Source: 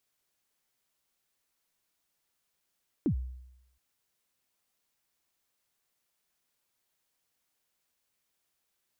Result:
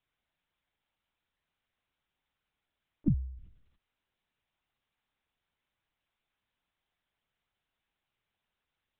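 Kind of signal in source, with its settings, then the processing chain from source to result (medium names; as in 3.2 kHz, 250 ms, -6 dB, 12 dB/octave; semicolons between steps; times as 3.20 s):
kick drum length 0.72 s, from 360 Hz, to 63 Hz, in 90 ms, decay 0.86 s, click off, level -22 dB
band-stop 550 Hz, Q 18; dynamic bell 140 Hz, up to +7 dB, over -47 dBFS, Q 3; monotone LPC vocoder at 8 kHz 300 Hz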